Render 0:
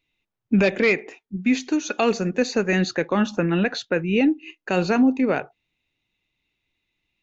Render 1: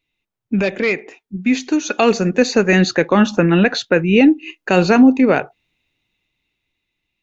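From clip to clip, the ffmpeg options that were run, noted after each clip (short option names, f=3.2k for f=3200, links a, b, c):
-af "dynaudnorm=f=300:g=11:m=11.5dB"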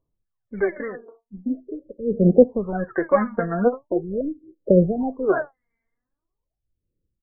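-af "aecho=1:1:1.8:0.37,aphaser=in_gain=1:out_gain=1:delay=4.4:decay=0.8:speed=0.43:type=sinusoidal,afftfilt=real='re*lt(b*sr/1024,570*pow(2300/570,0.5+0.5*sin(2*PI*0.39*pts/sr)))':imag='im*lt(b*sr/1024,570*pow(2300/570,0.5+0.5*sin(2*PI*0.39*pts/sr)))':win_size=1024:overlap=0.75,volume=-10dB"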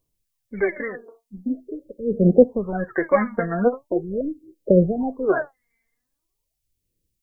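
-af "aexciter=amount=4.4:drive=2.7:freq=2k"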